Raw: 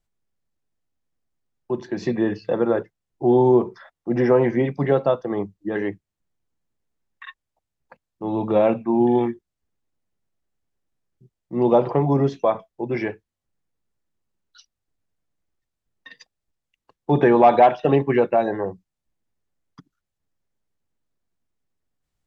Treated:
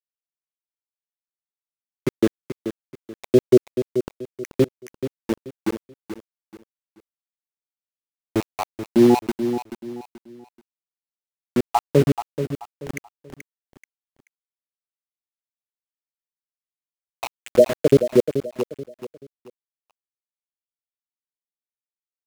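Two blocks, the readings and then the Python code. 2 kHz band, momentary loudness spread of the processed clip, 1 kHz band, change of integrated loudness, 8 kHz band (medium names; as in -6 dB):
-5.5 dB, 20 LU, -8.5 dB, -1.5 dB, no reading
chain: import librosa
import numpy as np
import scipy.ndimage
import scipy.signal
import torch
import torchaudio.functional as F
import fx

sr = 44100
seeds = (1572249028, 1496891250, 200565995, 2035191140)

p1 = fx.spec_dropout(x, sr, seeds[0], share_pct=84)
p2 = np.where(np.abs(p1) >= 10.0 ** (-27.5 / 20.0), p1, 0.0)
p3 = p2 + fx.echo_feedback(p2, sr, ms=432, feedback_pct=31, wet_db=-10, dry=0)
y = p3 * librosa.db_to_amplitude(5.0)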